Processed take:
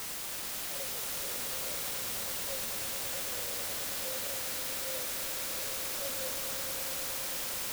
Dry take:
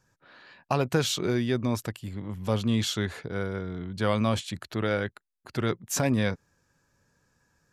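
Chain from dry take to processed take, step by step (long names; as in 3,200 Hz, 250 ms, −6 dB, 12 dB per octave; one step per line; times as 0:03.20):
flat-topped bell 910 Hz +16 dB
brickwall limiter −27 dBFS, peak gain reduction 27 dB
formant resonators in series e
bit-depth reduction 6 bits, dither triangular
on a send: echo that builds up and dies away 108 ms, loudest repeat 5, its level −10 dB
on the sum: level −3 dB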